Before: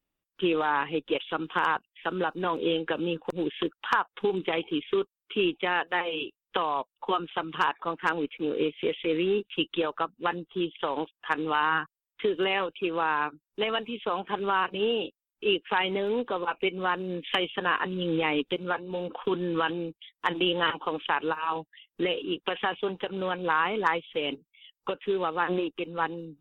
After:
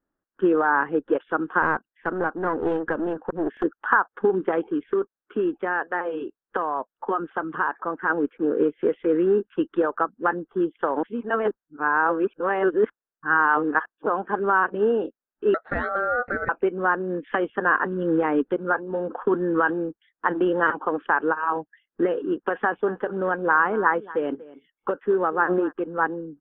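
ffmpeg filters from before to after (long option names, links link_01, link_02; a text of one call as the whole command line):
ffmpeg -i in.wav -filter_complex "[0:a]asettb=1/sr,asplit=3[link_01][link_02][link_03];[link_01]atrim=end=1.624[link_04];[link_02]atrim=start=1.62:end=3.64,asetpts=PTS-STARTPTS,afade=type=in:duration=0.004:curve=qsin,afade=type=out:start_time=2.016:duration=0.004:curve=qsin,aeval=exprs='clip(val(0),-1,0.0211)':channel_layout=same[link_05];[link_03]atrim=start=3.636[link_06];[link_04][link_05]acrossfade=duration=0.004:curve1=hsin:curve2=qsin[link_07];[link_07][link_06]acrossfade=duration=0.004:curve1=qsin:curve2=hsin,asettb=1/sr,asplit=3[link_08][link_09][link_10];[link_08]atrim=end=4.634[link_11];[link_09]atrim=start=4.63:end=8.1,asetpts=PTS-STARTPTS,afade=type=in:duration=0.004:curve=qsin,afade=type=out:start_time=3.466:duration=0.004:curve=qsin,acompressor=threshold=-30dB:ratio=1.5:attack=3.2:release=140:knee=1:detection=peak[link_12];[link_10]atrim=start=8.096[link_13];[link_11][link_12]acrossfade=duration=0.004:curve1=hsin:curve2=qsin[link_14];[link_14][link_13]acrossfade=duration=0.004:curve1=qsin:curve2=hsin,asettb=1/sr,asplit=3[link_15][link_16][link_17];[link_15]atrim=end=15.544[link_18];[link_16]atrim=start=15.54:end=16.49,asetpts=PTS-STARTPTS,afade=type=in:duration=0.004:curve=qsin,afade=type=out:start_time=0.946:duration=0.004:curve=qsin,aeval=exprs='val(0)*sin(2*PI*980*n/s)':channel_layout=same[link_19];[link_17]atrim=start=16.486[link_20];[link_18][link_19]acrossfade=duration=0.004:curve1=hsin:curve2=qsin[link_21];[link_21][link_20]acrossfade=duration=0.004:curve1=qsin:curve2=hsin,asplit=3[link_22][link_23][link_24];[link_22]afade=type=out:start_time=22.83:duration=0.02[link_25];[link_23]aecho=1:1:239:0.119,afade=type=in:start_time=22.83:duration=0.02,afade=type=out:start_time=25.71:duration=0.02[link_26];[link_24]afade=type=in:start_time=25.71:duration=0.02[link_27];[link_25][link_26][link_27]amix=inputs=3:normalize=0,asplit=3[link_28][link_29][link_30];[link_28]atrim=end=11.032[link_31];[link_29]atrim=start=11.028:end=14.062,asetpts=PTS-STARTPTS,areverse[link_32];[link_30]atrim=start=14.058[link_33];[link_31][link_32]acrossfade=duration=0.004:curve1=hsin:curve2=hsin[link_34];[link_34][link_33]acrossfade=duration=0.004:curve1=hsin:curve2=hsin,firequalizer=gain_entry='entry(160,0);entry(230,7);entry(1000,4);entry(1600,9);entry(2300,-15);entry(3800,-22)':delay=0.05:min_phase=1" out.wav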